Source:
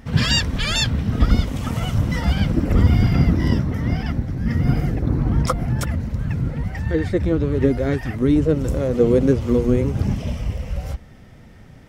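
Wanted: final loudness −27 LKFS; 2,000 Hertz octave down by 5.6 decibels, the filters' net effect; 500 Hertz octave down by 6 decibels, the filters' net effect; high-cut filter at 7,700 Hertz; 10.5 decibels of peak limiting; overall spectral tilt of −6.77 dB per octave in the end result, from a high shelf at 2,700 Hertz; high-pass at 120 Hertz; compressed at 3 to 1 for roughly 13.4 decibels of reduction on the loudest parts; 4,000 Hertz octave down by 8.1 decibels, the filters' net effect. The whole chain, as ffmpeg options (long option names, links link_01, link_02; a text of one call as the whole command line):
ffmpeg -i in.wav -af "highpass=120,lowpass=7700,equalizer=frequency=500:width_type=o:gain=-7,equalizer=frequency=2000:width_type=o:gain=-3.5,highshelf=frequency=2700:gain=-3.5,equalizer=frequency=4000:width_type=o:gain=-6,acompressor=threshold=-34dB:ratio=3,volume=12dB,alimiter=limit=-18.5dB:level=0:latency=1" out.wav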